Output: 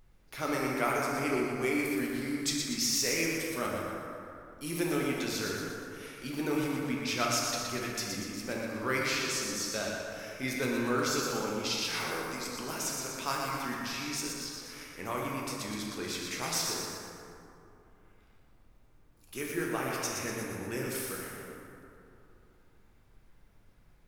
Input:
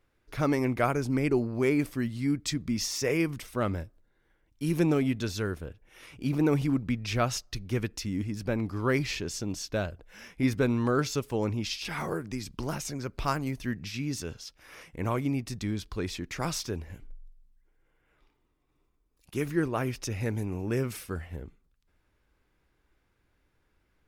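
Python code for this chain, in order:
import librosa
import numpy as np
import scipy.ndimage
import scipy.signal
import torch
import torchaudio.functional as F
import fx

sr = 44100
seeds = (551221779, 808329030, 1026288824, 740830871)

p1 = scipy.signal.sosfilt(scipy.signal.butter(2, 140.0, 'highpass', fs=sr, output='sos'), x)
p2 = fx.tilt_eq(p1, sr, slope=2.5)
p3 = fx.dmg_noise_colour(p2, sr, seeds[0], colour='brown', level_db=-59.0)
p4 = p3 + fx.echo_thinned(p3, sr, ms=120, feedback_pct=51, hz=900.0, wet_db=-5, dry=0)
p5 = fx.rev_plate(p4, sr, seeds[1], rt60_s=2.8, hf_ratio=0.35, predelay_ms=0, drr_db=-2.5)
y = p5 * librosa.db_to_amplitude(-5.5)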